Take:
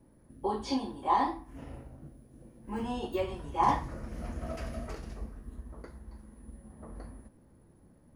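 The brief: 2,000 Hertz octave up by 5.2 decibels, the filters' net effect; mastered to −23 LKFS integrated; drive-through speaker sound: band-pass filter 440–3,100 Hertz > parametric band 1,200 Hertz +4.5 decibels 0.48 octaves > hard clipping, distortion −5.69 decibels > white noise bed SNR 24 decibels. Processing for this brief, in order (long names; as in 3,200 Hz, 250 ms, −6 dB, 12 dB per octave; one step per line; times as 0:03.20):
band-pass filter 440–3,100 Hz
parametric band 1,200 Hz +4.5 dB 0.48 octaves
parametric band 2,000 Hz +6 dB
hard clipping −27 dBFS
white noise bed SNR 24 dB
level +13.5 dB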